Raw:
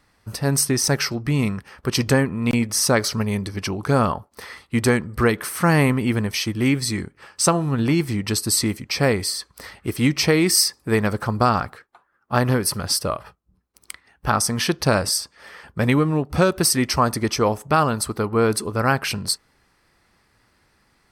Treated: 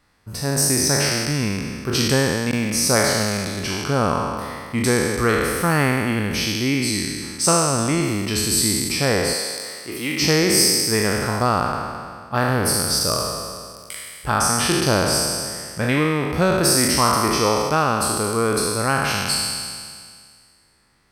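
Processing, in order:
peak hold with a decay on every bin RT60 2.02 s
0:09.33–0:10.22: high-pass filter 570 Hz 6 dB per octave
level −3.5 dB

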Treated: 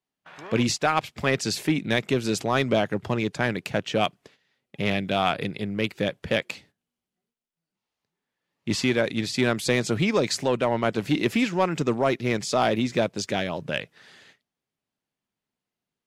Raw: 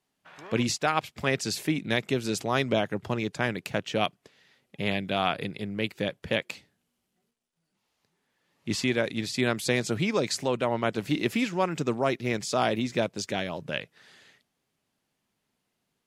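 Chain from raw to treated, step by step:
noise gate −57 dBFS, range −13 dB
high-shelf EQ 8,600 Hz −5.5 dB
in parallel at −4 dB: hard clipping −21.5 dBFS, distortion −10 dB

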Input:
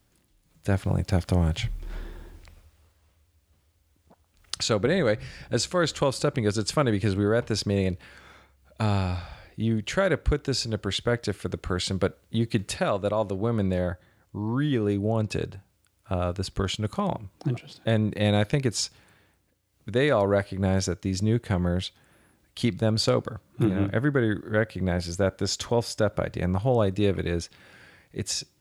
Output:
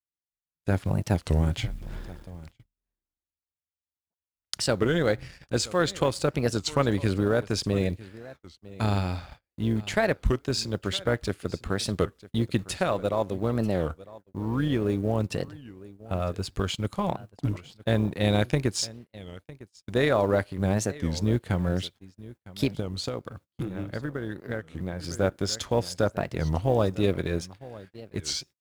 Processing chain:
mu-law and A-law mismatch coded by A
single-tap delay 954 ms −19 dB
noise gate −45 dBFS, range −33 dB
0:22.82–0:25.04: downward compressor, threshold −29 dBFS, peak gain reduction 11 dB
amplitude modulation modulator 180 Hz, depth 25%
wow of a warped record 33 1/3 rpm, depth 250 cents
level +1.5 dB

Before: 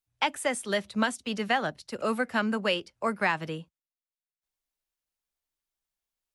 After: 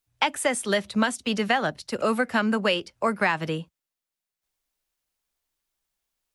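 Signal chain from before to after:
downward compressor 2 to 1, threshold −28 dBFS, peak gain reduction 4.5 dB
level +7 dB

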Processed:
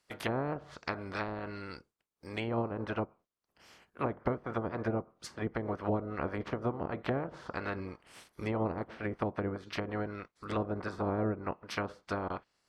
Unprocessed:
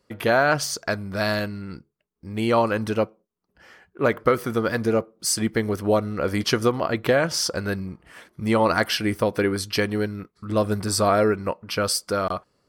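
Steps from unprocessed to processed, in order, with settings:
ceiling on every frequency bin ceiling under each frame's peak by 20 dB
treble cut that deepens with the level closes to 590 Hz, closed at −18.5 dBFS
level −8.5 dB

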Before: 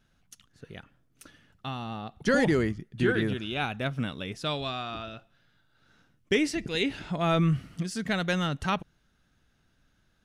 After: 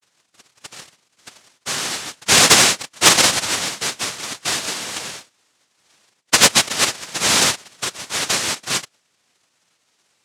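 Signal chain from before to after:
vocoder with a gliding carrier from C#4, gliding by +6 semitones
high-shelf EQ 3,900 Hz +11 dB
all-pass dispersion highs, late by 71 ms, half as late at 2,300 Hz
cochlear-implant simulation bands 1
in parallel at −11.5 dB: sine wavefolder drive 7 dB, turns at −6 dBFS
on the sum: level +5.5 dB

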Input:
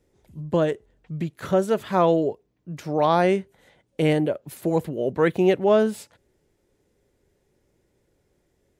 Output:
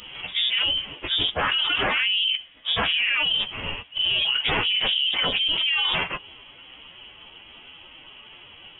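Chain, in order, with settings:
partials spread apart or drawn together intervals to 130%
high-pass filter 780 Hz 12 dB per octave
speech leveller within 3 dB 0.5 s
phase-vocoder pitch shift with formants kept −7 semitones
voice inversion scrambler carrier 3,600 Hz
envelope flattener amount 100%

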